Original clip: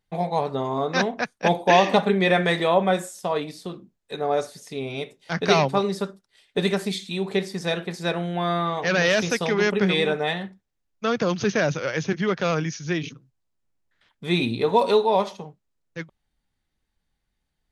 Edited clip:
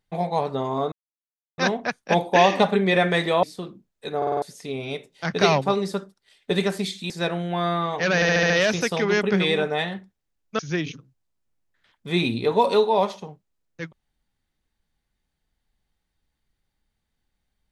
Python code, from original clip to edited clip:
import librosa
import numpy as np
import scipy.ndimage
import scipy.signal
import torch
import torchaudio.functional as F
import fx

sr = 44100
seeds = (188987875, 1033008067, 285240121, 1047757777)

y = fx.edit(x, sr, fx.insert_silence(at_s=0.92, length_s=0.66),
    fx.cut(start_s=2.77, length_s=0.73),
    fx.stutter_over(start_s=4.24, slice_s=0.05, count=5),
    fx.cut(start_s=7.17, length_s=0.77),
    fx.stutter(start_s=8.99, slice_s=0.07, count=6),
    fx.cut(start_s=11.08, length_s=1.68), tone=tone)